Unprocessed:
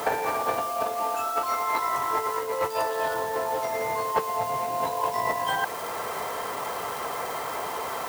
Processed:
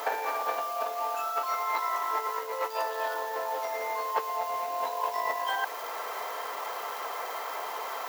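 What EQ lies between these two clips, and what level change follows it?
high-pass filter 520 Hz 12 dB per octave
parametric band 9,000 Hz −12 dB 0.3 octaves
−3.0 dB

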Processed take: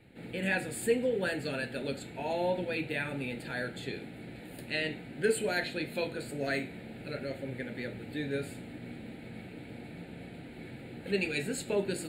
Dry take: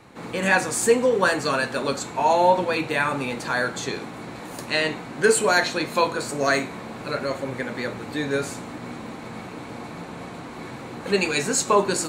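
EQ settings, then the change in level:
low-shelf EQ 110 Hz +5.5 dB
phaser with its sweep stopped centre 2,600 Hz, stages 4
−8.0 dB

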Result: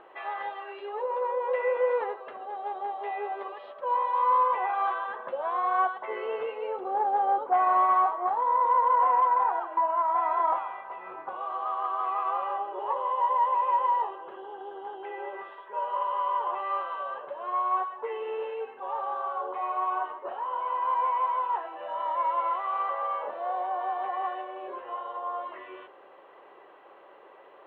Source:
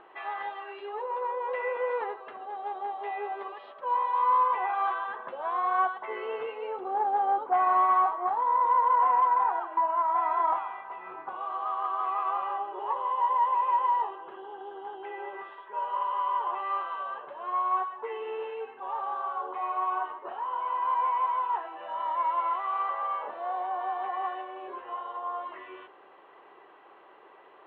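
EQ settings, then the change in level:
parametric band 550 Hz +8.5 dB 0.35 octaves
0.0 dB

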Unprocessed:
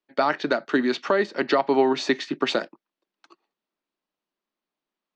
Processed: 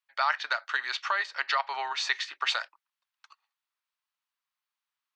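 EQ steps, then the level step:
high-pass filter 990 Hz 24 dB per octave
0.0 dB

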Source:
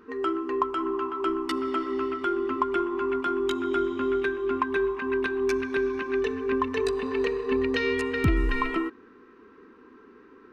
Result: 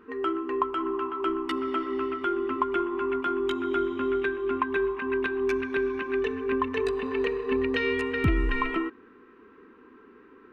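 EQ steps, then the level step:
high shelf with overshoot 3,800 Hz −6 dB, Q 1.5
−1.0 dB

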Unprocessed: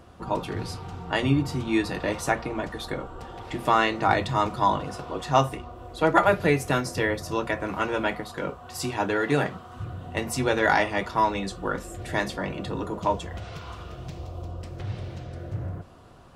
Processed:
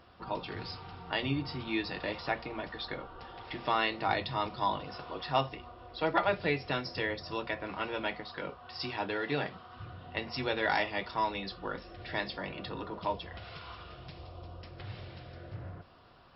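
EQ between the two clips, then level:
dynamic equaliser 1,400 Hz, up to −6 dB, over −37 dBFS, Q 1.2
linear-phase brick-wall low-pass 5,500 Hz
tilt shelving filter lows −5 dB, about 770 Hz
−6.5 dB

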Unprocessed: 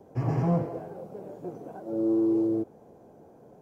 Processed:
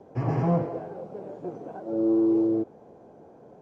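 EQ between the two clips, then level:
high-frequency loss of the air 94 metres
low-shelf EQ 220 Hz −5 dB
+4.0 dB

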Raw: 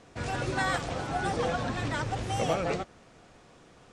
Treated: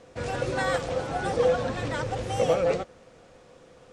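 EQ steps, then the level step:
parametric band 510 Hz +12.5 dB 0.25 octaves
0.0 dB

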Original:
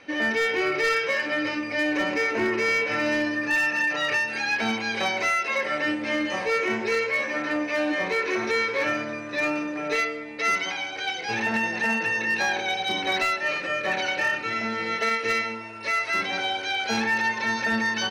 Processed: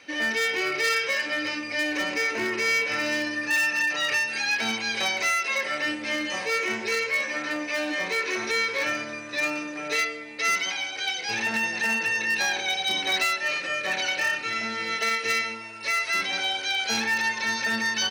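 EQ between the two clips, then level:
high-pass filter 52 Hz
high-shelf EQ 2,200 Hz +11 dB
high-shelf EQ 8,100 Hz +5.5 dB
−5.5 dB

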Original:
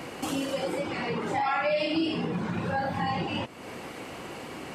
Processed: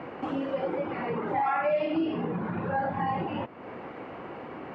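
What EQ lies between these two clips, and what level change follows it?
high-pass filter 1,200 Hz 6 dB per octave
low-pass filter 1,800 Hz 12 dB per octave
spectral tilt −4 dB per octave
+5.0 dB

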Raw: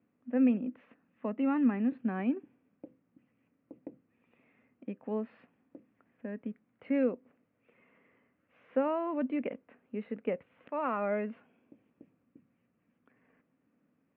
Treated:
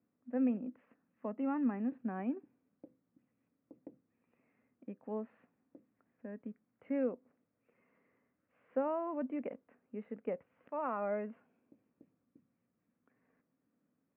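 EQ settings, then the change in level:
low-pass filter 2,000 Hz 12 dB per octave
dynamic equaliser 780 Hz, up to +4 dB, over −45 dBFS, Q 1.2
−6.5 dB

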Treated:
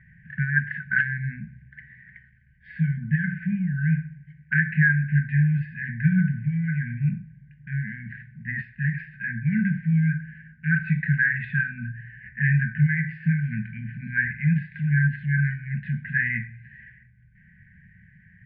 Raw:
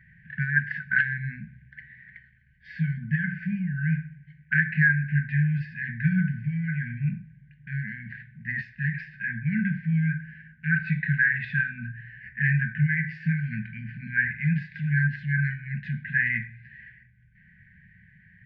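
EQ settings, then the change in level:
high-frequency loss of the air 420 metres
+3.5 dB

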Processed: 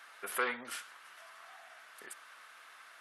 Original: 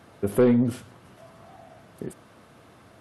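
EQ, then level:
high-pass with resonance 1,500 Hz, resonance Q 1.6
+1.0 dB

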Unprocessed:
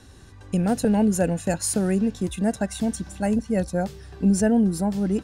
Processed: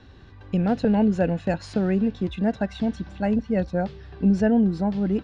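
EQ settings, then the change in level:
low-pass filter 4,100 Hz 24 dB per octave
0.0 dB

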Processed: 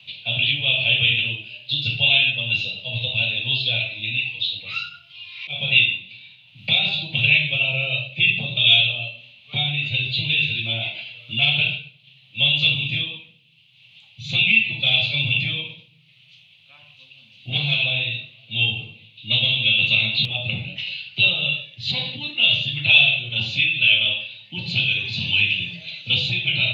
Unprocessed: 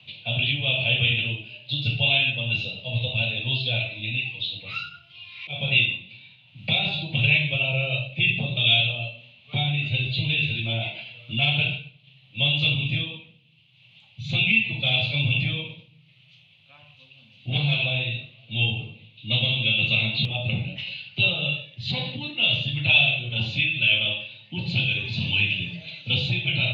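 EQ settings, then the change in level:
high-shelf EQ 2,000 Hz +11 dB
−3.0 dB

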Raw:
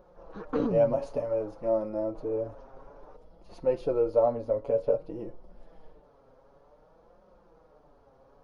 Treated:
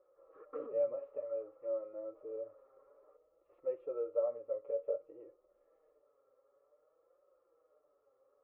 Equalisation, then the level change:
pair of resonant band-passes 920 Hz, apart 1.1 octaves
high-frequency loss of the air 360 metres
phaser with its sweep stopped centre 1,000 Hz, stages 8
+1.5 dB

